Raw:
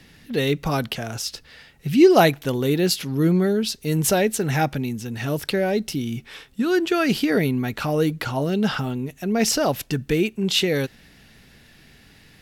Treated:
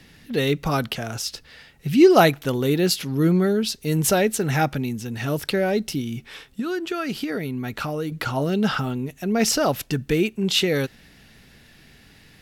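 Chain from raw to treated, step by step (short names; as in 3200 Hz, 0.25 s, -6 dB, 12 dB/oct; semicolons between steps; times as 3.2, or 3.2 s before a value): dynamic EQ 1300 Hz, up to +5 dB, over -43 dBFS, Q 5.6; 6–8.12 compressor 4:1, threshold -25 dBFS, peak gain reduction 9 dB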